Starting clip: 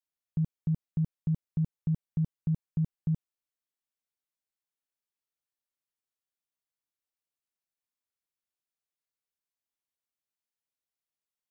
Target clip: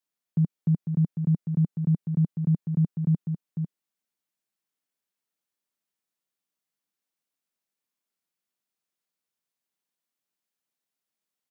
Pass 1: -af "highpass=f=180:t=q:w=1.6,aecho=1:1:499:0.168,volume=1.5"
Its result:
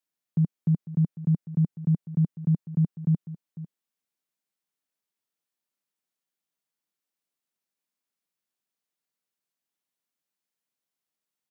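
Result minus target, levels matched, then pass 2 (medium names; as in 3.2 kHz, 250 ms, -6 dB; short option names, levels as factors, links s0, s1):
echo-to-direct -8.5 dB
-af "highpass=f=180:t=q:w=1.6,aecho=1:1:499:0.447,volume=1.5"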